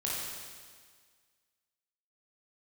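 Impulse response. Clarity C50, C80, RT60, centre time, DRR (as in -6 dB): -2.5 dB, 0.5 dB, 1.7 s, 0.112 s, -6.0 dB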